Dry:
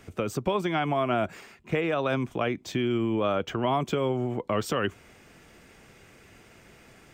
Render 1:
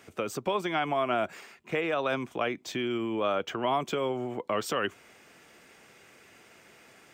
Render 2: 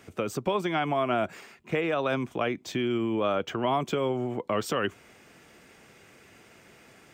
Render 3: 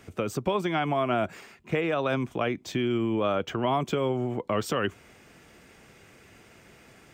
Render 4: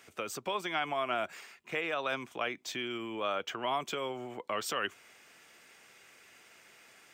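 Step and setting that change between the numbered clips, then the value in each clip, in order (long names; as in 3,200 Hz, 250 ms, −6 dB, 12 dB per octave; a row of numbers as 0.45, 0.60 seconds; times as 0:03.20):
high-pass filter, corner frequency: 410, 160, 50, 1,400 Hertz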